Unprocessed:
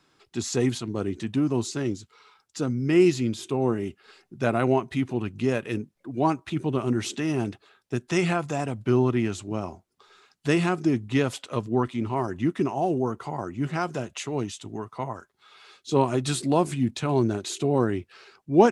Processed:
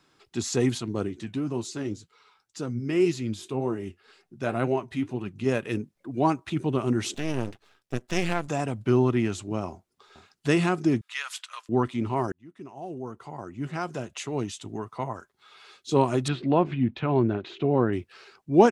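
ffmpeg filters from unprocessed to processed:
ffmpeg -i in.wav -filter_complex "[0:a]asplit=3[link_01][link_02][link_03];[link_01]afade=type=out:start_time=1.06:duration=0.02[link_04];[link_02]flanger=delay=4.8:depth=6.9:regen=58:speed=1.9:shape=triangular,afade=type=in:start_time=1.06:duration=0.02,afade=type=out:start_time=5.45:duration=0.02[link_05];[link_03]afade=type=in:start_time=5.45:duration=0.02[link_06];[link_04][link_05][link_06]amix=inputs=3:normalize=0,asettb=1/sr,asplit=3[link_07][link_08][link_09];[link_07]atrim=end=7.144[link_10];[link_08]atrim=start=7.14:end=8.48,asetpts=PTS-STARTPTS,afade=type=in:duration=0.004:curve=qsin,afade=type=out:start_time=1.336:duration=0.004:curve=qsin,aeval=exprs='max(val(0),0)':channel_layout=same[link_11];[link_09]atrim=start=8.476[link_12];[link_10][link_11]acrossfade=duration=0.004:curve1=hsin:curve2=qsin[link_13];[link_13][link_12]acrossfade=duration=0.004:curve1=qsin:curve2=hsin,asplit=2[link_14][link_15];[link_15]afade=type=in:start_time=9.69:duration=0.01,afade=type=out:start_time=10.48:duration=0.01,aecho=0:1:460|920|1380:0.266073|0.0665181|0.0166295[link_16];[link_14][link_16]amix=inputs=2:normalize=0,asettb=1/sr,asplit=3[link_17][link_18][link_19];[link_17]atrim=end=11.014[link_20];[link_18]atrim=start=11.01:end=11.69,asetpts=PTS-STARTPTS,afade=type=in:duration=0.004:curve=qsin,afade=type=out:start_time=0.676:duration=0.004:curve=qsin,highpass=frequency=1200:width=0.5412,highpass=frequency=1200:width=1.3066[link_21];[link_19]atrim=start=11.686[link_22];[link_20][link_21]acrossfade=duration=0.004:curve1=hsin:curve2=qsin[link_23];[link_23][link_22]acrossfade=duration=0.004:curve1=qsin:curve2=hsin,asettb=1/sr,asplit=3[link_24][link_25][link_26];[link_24]atrim=end=16.284[link_27];[link_25]atrim=start=16.28:end=17.93,asetpts=PTS-STARTPTS,afade=type=in:duration=0.004:curve=qsin,afade=type=out:start_time=1.646:duration=0.004:curve=qsin,lowpass=frequency=3100:width=0.5412,lowpass=frequency=3100:width=1.3066[link_28];[link_26]atrim=start=17.926[link_29];[link_27][link_28]acrossfade=duration=0.004:curve1=hsin:curve2=qsin[link_30];[link_30][link_29]acrossfade=duration=0.004:curve1=qsin:curve2=hsin,asplit=2[link_31][link_32];[link_31]atrim=end=12.32,asetpts=PTS-STARTPTS,afade=type=out:start_time=12.316:duration=0.004:curve=hsin[link_33];[link_32]atrim=start=12.32,asetpts=PTS-STARTPTS,afade=type=in:duration=2.29[link_34];[link_33][link_34]concat=n=2:v=0:a=1" out.wav

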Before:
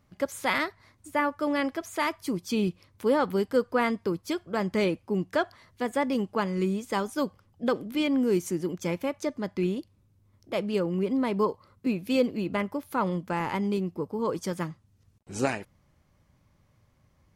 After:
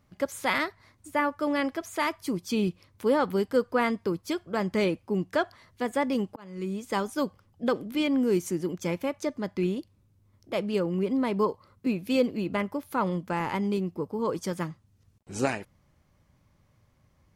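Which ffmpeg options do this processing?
ffmpeg -i in.wav -filter_complex "[0:a]asplit=2[link_01][link_02];[link_01]atrim=end=6.36,asetpts=PTS-STARTPTS,afade=type=out:start_time=6.356:duration=0.004:curve=hsin[link_03];[link_02]atrim=start=6.36,asetpts=PTS-STARTPTS,afade=type=in:duration=0.57[link_04];[link_03][link_04]concat=n=2:v=0:a=1" out.wav

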